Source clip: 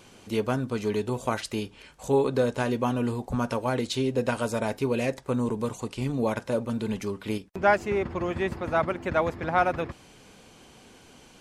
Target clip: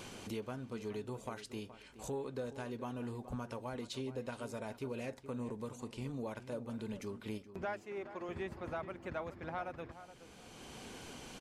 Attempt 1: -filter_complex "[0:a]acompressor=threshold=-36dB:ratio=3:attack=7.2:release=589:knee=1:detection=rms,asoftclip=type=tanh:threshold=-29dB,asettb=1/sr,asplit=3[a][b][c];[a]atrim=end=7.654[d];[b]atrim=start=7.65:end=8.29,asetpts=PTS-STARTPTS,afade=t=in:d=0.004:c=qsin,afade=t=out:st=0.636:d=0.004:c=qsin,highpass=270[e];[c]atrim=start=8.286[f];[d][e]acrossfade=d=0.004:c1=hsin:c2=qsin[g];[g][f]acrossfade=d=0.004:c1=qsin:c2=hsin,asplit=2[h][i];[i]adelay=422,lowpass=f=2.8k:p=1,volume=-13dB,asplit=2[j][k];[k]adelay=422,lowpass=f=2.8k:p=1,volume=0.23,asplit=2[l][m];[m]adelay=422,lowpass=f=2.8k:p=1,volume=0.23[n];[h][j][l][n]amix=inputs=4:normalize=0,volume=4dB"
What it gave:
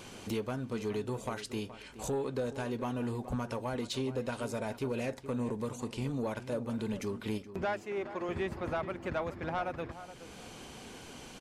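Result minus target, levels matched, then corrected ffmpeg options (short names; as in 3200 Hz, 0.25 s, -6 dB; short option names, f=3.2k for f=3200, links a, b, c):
compressor: peak gain reduction -7.5 dB
-filter_complex "[0:a]acompressor=threshold=-47.5dB:ratio=3:attack=7.2:release=589:knee=1:detection=rms,asoftclip=type=tanh:threshold=-29dB,asettb=1/sr,asplit=3[a][b][c];[a]atrim=end=7.654[d];[b]atrim=start=7.65:end=8.29,asetpts=PTS-STARTPTS,afade=t=in:d=0.004:c=qsin,afade=t=out:st=0.636:d=0.004:c=qsin,highpass=270[e];[c]atrim=start=8.286[f];[d][e]acrossfade=d=0.004:c1=hsin:c2=qsin[g];[g][f]acrossfade=d=0.004:c1=qsin:c2=hsin,asplit=2[h][i];[i]adelay=422,lowpass=f=2.8k:p=1,volume=-13dB,asplit=2[j][k];[k]adelay=422,lowpass=f=2.8k:p=1,volume=0.23,asplit=2[l][m];[m]adelay=422,lowpass=f=2.8k:p=1,volume=0.23[n];[h][j][l][n]amix=inputs=4:normalize=0,volume=4dB"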